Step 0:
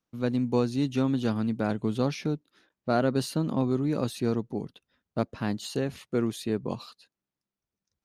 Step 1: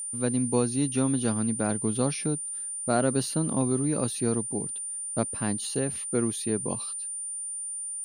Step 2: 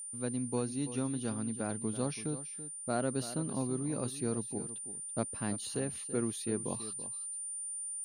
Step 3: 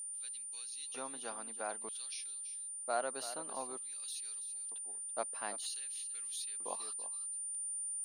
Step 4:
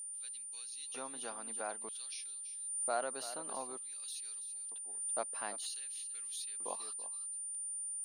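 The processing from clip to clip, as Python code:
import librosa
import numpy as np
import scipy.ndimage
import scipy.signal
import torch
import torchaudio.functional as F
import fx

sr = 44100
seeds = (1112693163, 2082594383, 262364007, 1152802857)

y1 = x + 10.0 ** (-32.0 / 20.0) * np.sin(2.0 * np.pi * 9200.0 * np.arange(len(x)) / sr)
y2 = fx.rider(y1, sr, range_db=10, speed_s=2.0)
y2 = y2 + 10.0 ** (-13.0 / 20.0) * np.pad(y2, (int(332 * sr / 1000.0), 0))[:len(y2)]
y2 = y2 * 10.0 ** (-8.0 / 20.0)
y3 = fx.filter_lfo_highpass(y2, sr, shape='square', hz=0.53, low_hz=750.0, high_hz=3600.0, q=1.4)
y3 = y3 * 10.0 ** (-1.0 / 20.0)
y4 = fx.pre_swell(y3, sr, db_per_s=34.0)
y4 = y4 * 10.0 ** (-1.0 / 20.0)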